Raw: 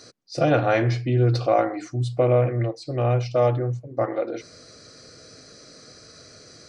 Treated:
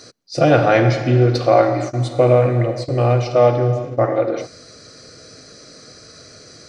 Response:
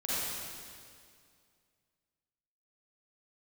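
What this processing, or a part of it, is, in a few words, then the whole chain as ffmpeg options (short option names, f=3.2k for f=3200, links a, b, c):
keyed gated reverb: -filter_complex "[0:a]asplit=3[a][b][c];[1:a]atrim=start_sample=2205[d];[b][d]afir=irnorm=-1:irlink=0[e];[c]apad=whole_len=294625[f];[e][f]sidechaingate=range=-31dB:threshold=-38dB:ratio=16:detection=peak,volume=-13dB[g];[a][g]amix=inputs=2:normalize=0,volume=5dB"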